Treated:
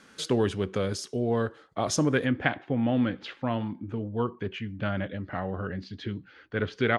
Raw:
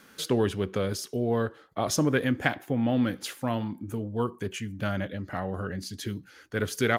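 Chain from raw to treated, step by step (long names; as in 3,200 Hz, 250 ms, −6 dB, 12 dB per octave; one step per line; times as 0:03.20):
low-pass filter 9,200 Hz 24 dB per octave, from 0:02.26 3,700 Hz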